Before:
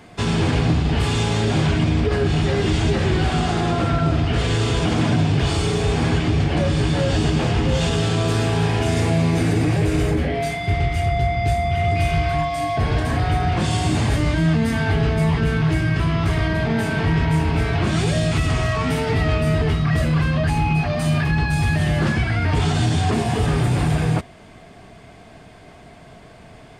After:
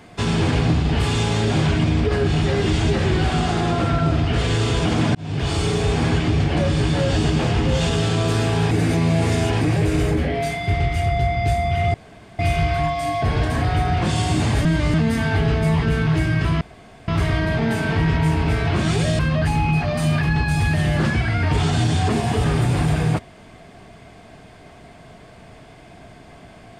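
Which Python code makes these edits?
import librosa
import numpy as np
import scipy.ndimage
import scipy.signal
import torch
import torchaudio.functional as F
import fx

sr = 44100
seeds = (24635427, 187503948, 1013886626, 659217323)

y = fx.edit(x, sr, fx.fade_in_span(start_s=5.15, length_s=0.57, curve='qsin'),
    fx.reverse_span(start_s=8.71, length_s=0.9),
    fx.insert_room_tone(at_s=11.94, length_s=0.45),
    fx.reverse_span(start_s=14.2, length_s=0.29),
    fx.insert_room_tone(at_s=16.16, length_s=0.47),
    fx.cut(start_s=18.27, length_s=1.94), tone=tone)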